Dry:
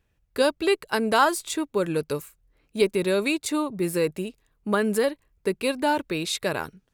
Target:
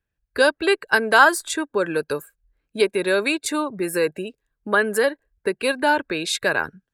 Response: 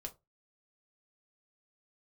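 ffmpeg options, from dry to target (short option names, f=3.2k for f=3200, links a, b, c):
-filter_complex "[0:a]equalizer=f=1.6k:t=o:w=0.22:g=10.5,acrossover=split=310[a][b];[a]acompressor=threshold=-40dB:ratio=6[c];[c][b]amix=inputs=2:normalize=0,afftdn=nr=16:nf=-45,volume=4dB"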